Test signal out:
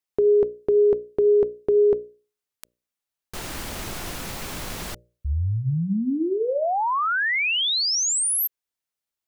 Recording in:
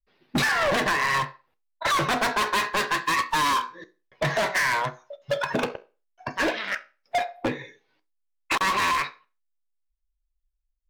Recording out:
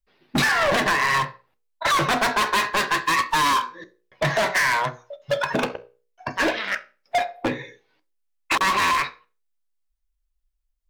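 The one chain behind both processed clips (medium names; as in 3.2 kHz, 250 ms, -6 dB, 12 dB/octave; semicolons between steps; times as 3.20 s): hum notches 60/120/180/240/300/360/420/480/540/600 Hz; trim +3 dB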